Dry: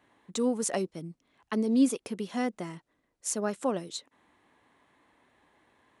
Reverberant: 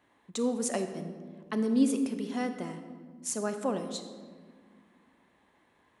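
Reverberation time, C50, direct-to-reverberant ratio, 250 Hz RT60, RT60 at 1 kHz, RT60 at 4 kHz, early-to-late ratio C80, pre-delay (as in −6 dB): 1.8 s, 8.5 dB, 7.5 dB, 2.9 s, 1.5 s, 1.0 s, 10.0 dB, 27 ms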